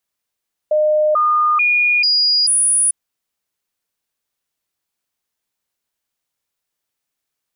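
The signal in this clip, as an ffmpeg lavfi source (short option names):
-f lavfi -i "aevalsrc='0.266*clip(min(mod(t,0.44),0.44-mod(t,0.44))/0.005,0,1)*sin(2*PI*610*pow(2,floor(t/0.44)/1)*mod(t,0.44))':d=2.2:s=44100"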